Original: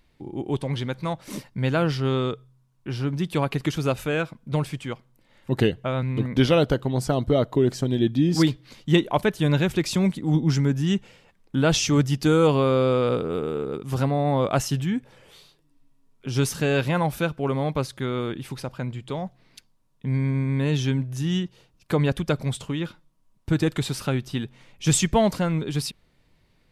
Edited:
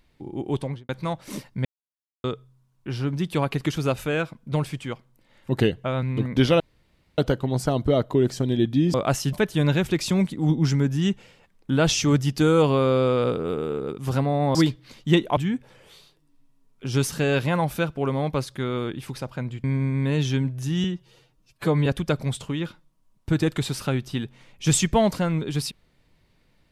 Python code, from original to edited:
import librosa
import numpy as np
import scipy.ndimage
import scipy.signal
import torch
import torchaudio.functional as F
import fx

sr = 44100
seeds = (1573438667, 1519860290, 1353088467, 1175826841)

y = fx.studio_fade_out(x, sr, start_s=0.6, length_s=0.29)
y = fx.edit(y, sr, fx.silence(start_s=1.65, length_s=0.59),
    fx.insert_room_tone(at_s=6.6, length_s=0.58),
    fx.swap(start_s=8.36, length_s=0.82, other_s=14.4, other_length_s=0.39),
    fx.cut(start_s=19.06, length_s=1.12),
    fx.stretch_span(start_s=21.38, length_s=0.68, factor=1.5), tone=tone)